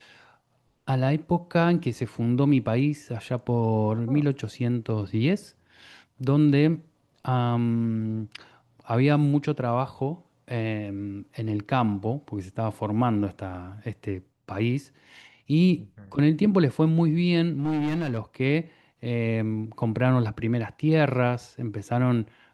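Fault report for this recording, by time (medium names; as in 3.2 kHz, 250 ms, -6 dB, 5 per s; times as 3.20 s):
17.53–18.18 s: clipped -22.5 dBFS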